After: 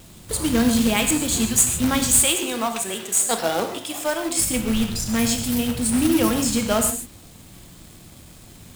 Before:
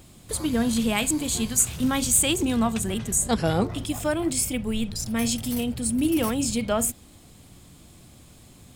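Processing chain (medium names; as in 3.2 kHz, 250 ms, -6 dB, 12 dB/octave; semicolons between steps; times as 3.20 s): 2.21–4.39 s: high-pass 450 Hz 12 dB/octave; companded quantiser 4-bit; gated-style reverb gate 170 ms flat, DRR 5.5 dB; trim +3 dB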